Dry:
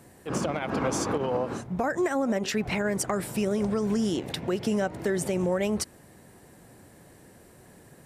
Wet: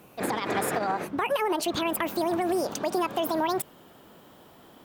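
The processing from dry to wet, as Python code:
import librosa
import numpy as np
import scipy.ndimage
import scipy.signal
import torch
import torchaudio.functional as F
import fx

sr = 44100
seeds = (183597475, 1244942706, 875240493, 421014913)

y = fx.speed_glide(x, sr, from_pct=146, to_pct=187)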